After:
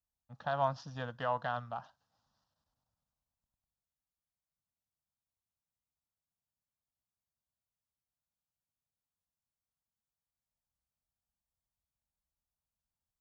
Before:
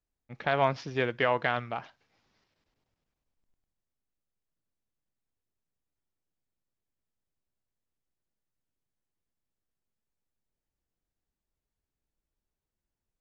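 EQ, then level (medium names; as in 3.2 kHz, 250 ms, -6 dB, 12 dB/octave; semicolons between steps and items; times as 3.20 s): high-pass 41 Hz; static phaser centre 920 Hz, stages 4; -4.0 dB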